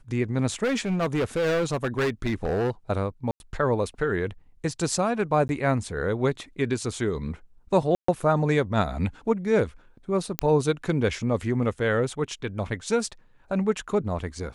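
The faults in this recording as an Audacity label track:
0.630000	2.700000	clipping −21 dBFS
3.310000	3.400000	drop-out 91 ms
5.480000	5.490000	drop-out 11 ms
7.950000	8.080000	drop-out 134 ms
10.390000	10.390000	click −6 dBFS

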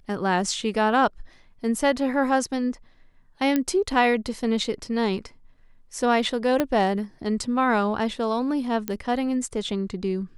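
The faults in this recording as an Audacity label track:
3.560000	3.560000	click −10 dBFS
6.600000	6.600000	click −9 dBFS
8.880000	8.880000	click −13 dBFS

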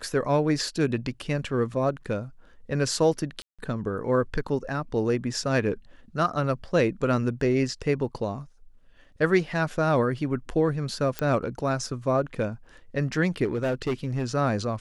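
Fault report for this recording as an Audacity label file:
3.420000	3.590000	drop-out 166 ms
11.190000	11.190000	click −12 dBFS
13.440000	14.250000	clipping −22 dBFS

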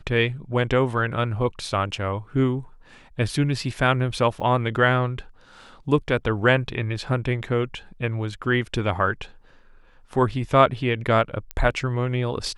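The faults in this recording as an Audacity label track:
4.400000	4.400000	drop-out 4.7 ms
11.510000	11.510000	click −14 dBFS

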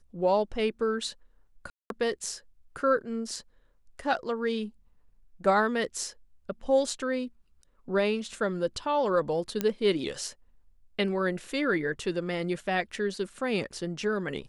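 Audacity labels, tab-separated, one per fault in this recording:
1.700000	1.900000	drop-out 202 ms
9.610000	9.610000	click −13 dBFS

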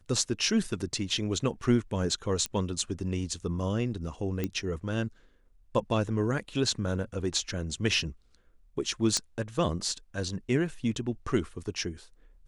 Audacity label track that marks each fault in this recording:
2.460000	2.460000	click −16 dBFS
4.440000	4.440000	click −17 dBFS
9.170000	9.170000	click −13 dBFS

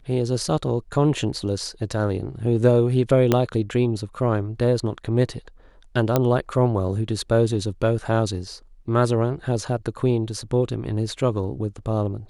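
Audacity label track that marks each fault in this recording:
3.320000	3.320000	click −5 dBFS
6.160000	6.160000	click −5 dBFS

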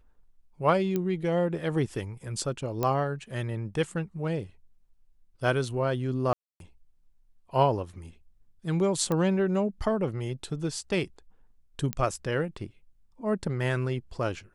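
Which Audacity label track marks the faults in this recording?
0.960000	0.960000	click −16 dBFS
2.830000	2.830000	click −14 dBFS
6.330000	6.600000	drop-out 272 ms
9.120000	9.120000	click −16 dBFS
11.930000	11.930000	click −15 dBFS

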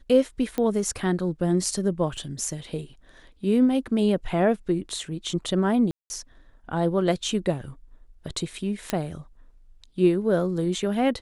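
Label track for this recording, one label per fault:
0.580000	0.580000	click −14 dBFS
2.170000	2.170000	drop-out 4.1 ms
5.910000	6.100000	drop-out 190 ms
8.900000	8.900000	click −10 dBFS

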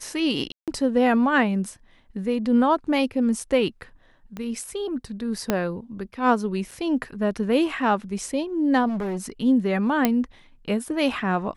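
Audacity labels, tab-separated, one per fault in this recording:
0.520000	0.680000	drop-out 157 ms
4.370000	4.370000	click −20 dBFS
5.500000	5.500000	click −7 dBFS
6.710000	6.720000	drop-out 5.6 ms
8.880000	9.300000	clipping −24.5 dBFS
10.050000	10.050000	click −5 dBFS

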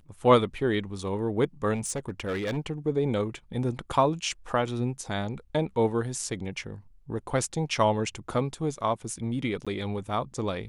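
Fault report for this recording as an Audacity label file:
1.740000	2.580000	clipping −26 dBFS
9.650000	9.670000	drop-out 16 ms

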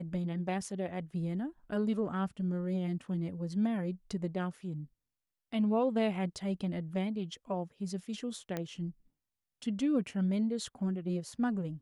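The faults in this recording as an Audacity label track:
8.570000	8.570000	click −21 dBFS

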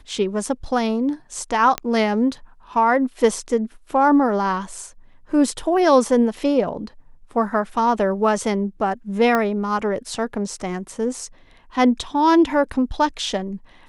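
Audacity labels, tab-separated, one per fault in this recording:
1.780000	1.780000	click −7 dBFS
9.350000	9.350000	click −8 dBFS

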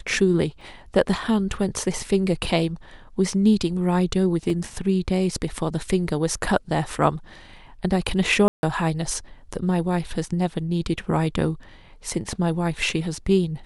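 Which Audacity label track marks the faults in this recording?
0.610000	0.610000	drop-out 2.3 ms
4.500000	4.500000	drop-out 2 ms
8.480000	8.630000	drop-out 151 ms

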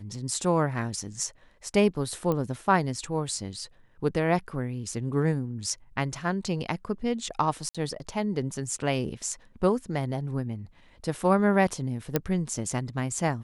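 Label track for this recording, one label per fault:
2.320000	2.320000	click −16 dBFS
7.690000	7.750000	drop-out 56 ms
12.160000	12.160000	click −9 dBFS

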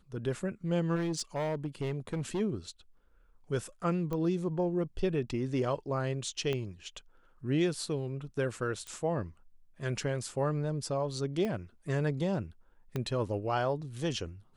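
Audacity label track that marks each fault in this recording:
0.950000	2.410000	clipping −28.5 dBFS
4.130000	4.130000	click −23 dBFS
6.530000	6.530000	click −21 dBFS
8.870000	8.870000	click −28 dBFS
11.450000	11.450000	click −22 dBFS
12.960000	12.960000	click −21 dBFS

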